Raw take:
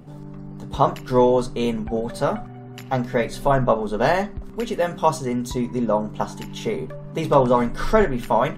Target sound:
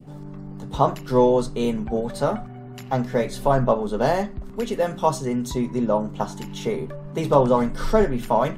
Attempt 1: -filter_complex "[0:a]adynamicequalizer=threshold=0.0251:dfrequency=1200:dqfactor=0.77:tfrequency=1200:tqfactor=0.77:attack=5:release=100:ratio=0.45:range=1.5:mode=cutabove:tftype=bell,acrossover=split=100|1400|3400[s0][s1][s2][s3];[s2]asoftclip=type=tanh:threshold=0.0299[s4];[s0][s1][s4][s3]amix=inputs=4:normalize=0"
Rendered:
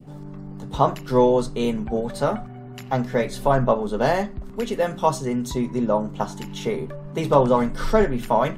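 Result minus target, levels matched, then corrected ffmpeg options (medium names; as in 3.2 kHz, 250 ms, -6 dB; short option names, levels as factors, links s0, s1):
saturation: distortion -8 dB
-filter_complex "[0:a]adynamicequalizer=threshold=0.0251:dfrequency=1200:dqfactor=0.77:tfrequency=1200:tqfactor=0.77:attack=5:release=100:ratio=0.45:range=1.5:mode=cutabove:tftype=bell,acrossover=split=100|1400|3400[s0][s1][s2][s3];[s2]asoftclip=type=tanh:threshold=0.00944[s4];[s0][s1][s4][s3]amix=inputs=4:normalize=0"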